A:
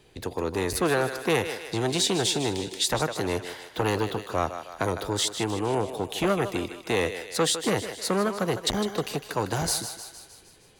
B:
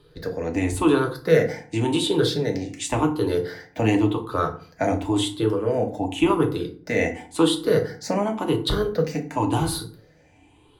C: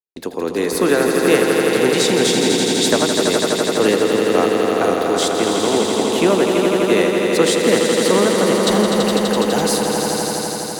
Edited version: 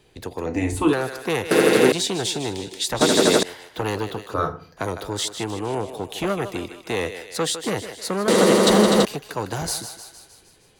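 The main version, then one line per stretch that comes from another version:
A
0.46–0.93 s: from B
1.51–1.92 s: from C
3.01–3.43 s: from C
4.34–4.77 s: from B
8.28–9.05 s: from C

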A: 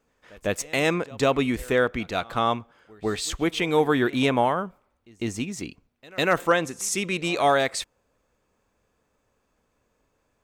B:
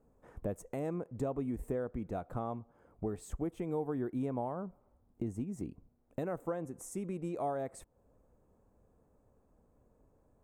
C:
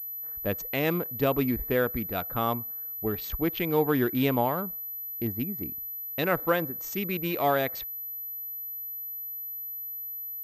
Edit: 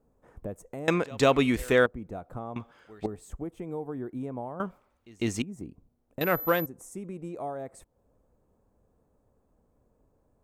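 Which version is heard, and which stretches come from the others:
B
0.88–1.86 s: from A
2.56–3.06 s: from A
4.60–5.42 s: from A
6.21–6.66 s: from C

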